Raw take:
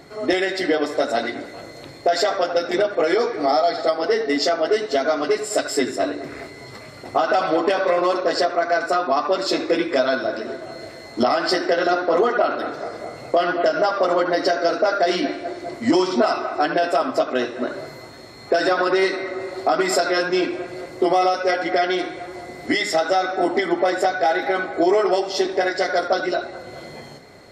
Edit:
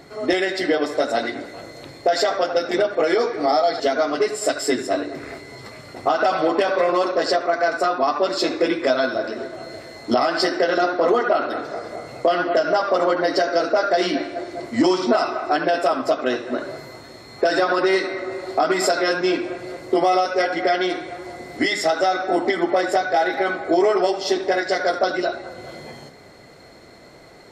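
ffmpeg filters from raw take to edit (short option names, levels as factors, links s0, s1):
-filter_complex "[0:a]asplit=2[s0][s1];[s0]atrim=end=3.802[s2];[s1]atrim=start=4.888[s3];[s2][s3]acrossfade=d=0.004:c1=hsin:c2=hsin"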